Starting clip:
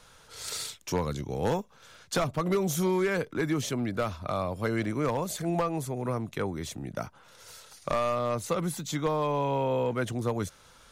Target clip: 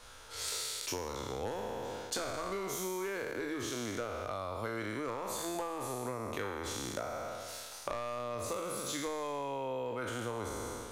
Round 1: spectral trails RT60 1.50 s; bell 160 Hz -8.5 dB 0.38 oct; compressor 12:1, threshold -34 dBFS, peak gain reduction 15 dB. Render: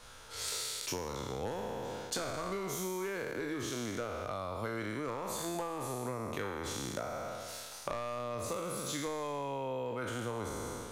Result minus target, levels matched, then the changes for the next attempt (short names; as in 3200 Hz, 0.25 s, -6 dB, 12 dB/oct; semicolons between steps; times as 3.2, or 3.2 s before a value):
125 Hz band +2.5 dB
change: bell 160 Hz -19 dB 0.38 oct